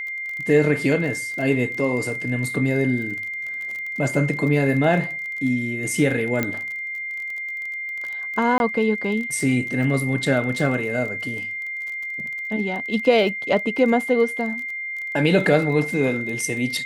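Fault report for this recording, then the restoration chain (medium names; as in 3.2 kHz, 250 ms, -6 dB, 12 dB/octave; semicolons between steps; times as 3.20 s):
crackle 26 per s -29 dBFS
whine 2.1 kHz -27 dBFS
6.43 s: pop -8 dBFS
8.58–8.60 s: dropout 21 ms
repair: de-click; band-stop 2.1 kHz, Q 30; interpolate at 8.58 s, 21 ms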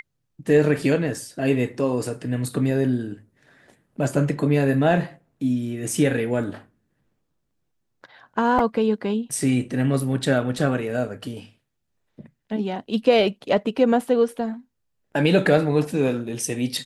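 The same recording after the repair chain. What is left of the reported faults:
6.43 s: pop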